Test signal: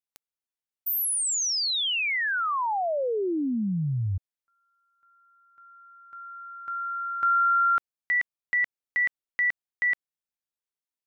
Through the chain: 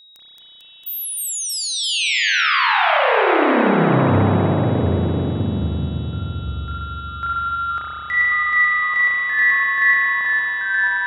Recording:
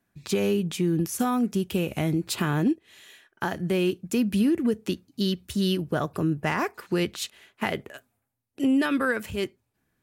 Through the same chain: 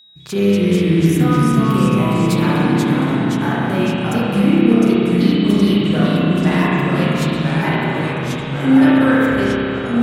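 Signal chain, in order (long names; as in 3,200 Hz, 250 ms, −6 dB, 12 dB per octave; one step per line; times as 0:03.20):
spring reverb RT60 3.2 s, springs 30 ms, chirp 35 ms, DRR −8 dB
steady tone 3,800 Hz −45 dBFS
delay with pitch and tempo change per echo 203 ms, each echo −2 semitones, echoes 3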